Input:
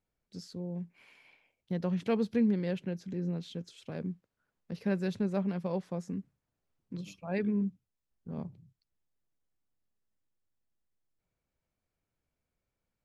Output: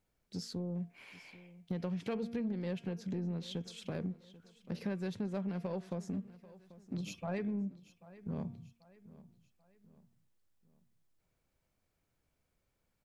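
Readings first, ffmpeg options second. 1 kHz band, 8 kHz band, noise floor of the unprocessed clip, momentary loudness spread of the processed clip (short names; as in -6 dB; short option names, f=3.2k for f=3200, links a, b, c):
-4.0 dB, n/a, under -85 dBFS, 20 LU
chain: -filter_complex "[0:a]bandreject=f=232.7:t=h:w=4,bandreject=f=465.4:t=h:w=4,bandreject=f=698.1:t=h:w=4,bandreject=f=930.8:t=h:w=4,bandreject=f=1.1635k:t=h:w=4,bandreject=f=1.3962k:t=h:w=4,bandreject=f=1.6289k:t=h:w=4,bandreject=f=1.8616k:t=h:w=4,bandreject=f=2.0943k:t=h:w=4,bandreject=f=2.327k:t=h:w=4,bandreject=f=2.5597k:t=h:w=4,bandreject=f=2.7924k:t=h:w=4,bandreject=f=3.0251k:t=h:w=4,bandreject=f=3.2578k:t=h:w=4,bandreject=f=3.4905k:t=h:w=4,acompressor=threshold=-39dB:ratio=5,aeval=exprs='0.0299*(cos(1*acos(clip(val(0)/0.0299,-1,1)))-cos(1*PI/2))+0.00133*(cos(5*acos(clip(val(0)/0.0299,-1,1)))-cos(5*PI/2))':c=same,asplit=2[a][b];[b]aecho=0:1:788|1576|2364:0.119|0.0511|0.022[c];[a][c]amix=inputs=2:normalize=0,volume=3.5dB"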